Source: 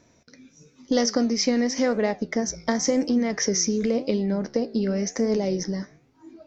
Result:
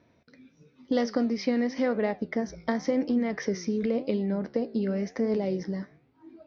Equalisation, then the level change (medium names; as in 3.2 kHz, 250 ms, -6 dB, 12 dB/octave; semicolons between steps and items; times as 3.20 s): high-pass 47 Hz; low-pass 4.4 kHz 24 dB/octave; distance through air 81 m; -3.5 dB